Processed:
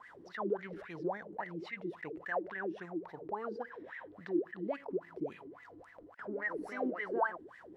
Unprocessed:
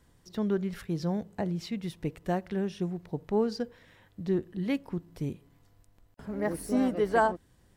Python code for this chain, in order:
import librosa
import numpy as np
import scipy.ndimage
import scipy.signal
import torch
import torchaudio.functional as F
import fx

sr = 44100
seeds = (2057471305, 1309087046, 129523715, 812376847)

p1 = fx.level_steps(x, sr, step_db=15)
p2 = x + (p1 * librosa.db_to_amplitude(-2.0))
p3 = fx.wah_lfo(p2, sr, hz=3.6, low_hz=310.0, high_hz=2000.0, q=15.0)
p4 = fx.env_flatten(p3, sr, amount_pct=50)
y = p4 * librosa.db_to_amplitude(1.0)